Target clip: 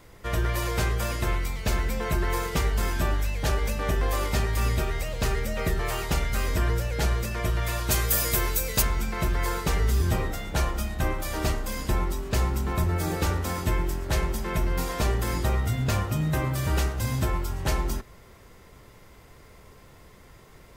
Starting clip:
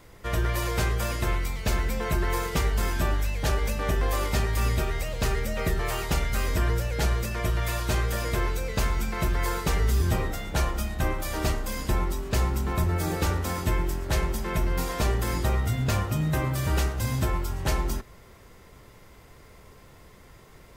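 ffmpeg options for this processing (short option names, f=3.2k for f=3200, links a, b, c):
-filter_complex "[0:a]asplit=3[a][b][c];[a]afade=t=out:st=7.9:d=0.02[d];[b]aemphasis=mode=production:type=75fm,afade=t=in:st=7.9:d=0.02,afade=t=out:st=8.81:d=0.02[e];[c]afade=t=in:st=8.81:d=0.02[f];[d][e][f]amix=inputs=3:normalize=0"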